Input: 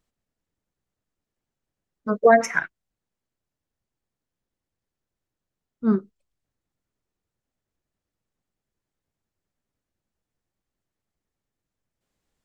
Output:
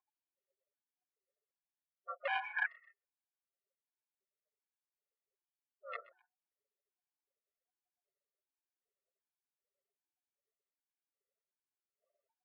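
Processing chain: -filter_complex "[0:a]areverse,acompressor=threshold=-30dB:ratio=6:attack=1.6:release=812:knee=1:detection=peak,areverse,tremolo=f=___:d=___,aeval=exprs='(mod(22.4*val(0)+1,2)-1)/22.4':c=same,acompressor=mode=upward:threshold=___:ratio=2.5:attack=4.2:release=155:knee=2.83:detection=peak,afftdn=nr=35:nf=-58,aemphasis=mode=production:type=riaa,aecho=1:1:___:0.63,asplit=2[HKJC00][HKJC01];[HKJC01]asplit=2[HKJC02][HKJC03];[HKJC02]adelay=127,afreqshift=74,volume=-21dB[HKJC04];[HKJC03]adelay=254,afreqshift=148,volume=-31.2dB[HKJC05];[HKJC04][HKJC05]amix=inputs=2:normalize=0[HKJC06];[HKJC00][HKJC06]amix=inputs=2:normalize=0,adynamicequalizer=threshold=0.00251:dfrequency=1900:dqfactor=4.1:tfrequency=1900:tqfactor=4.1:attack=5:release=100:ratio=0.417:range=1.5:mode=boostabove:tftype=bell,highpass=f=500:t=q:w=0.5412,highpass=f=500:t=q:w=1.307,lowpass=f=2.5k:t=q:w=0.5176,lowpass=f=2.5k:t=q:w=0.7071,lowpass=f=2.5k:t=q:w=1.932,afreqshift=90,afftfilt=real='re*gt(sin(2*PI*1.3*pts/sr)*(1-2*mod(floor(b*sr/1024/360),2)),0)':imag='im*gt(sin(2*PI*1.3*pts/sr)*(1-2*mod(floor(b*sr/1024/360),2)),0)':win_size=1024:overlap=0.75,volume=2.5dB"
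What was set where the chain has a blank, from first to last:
290, 0.333, -48dB, 6.4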